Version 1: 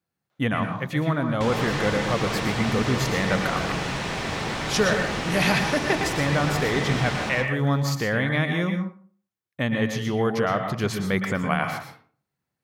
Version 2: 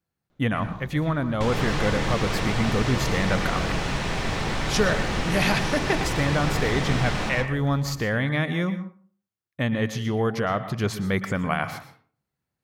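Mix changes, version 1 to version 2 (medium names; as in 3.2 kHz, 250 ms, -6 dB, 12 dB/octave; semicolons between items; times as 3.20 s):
speech: send -7.0 dB; first sound: remove high-pass 710 Hz; master: remove high-pass 120 Hz 6 dB/octave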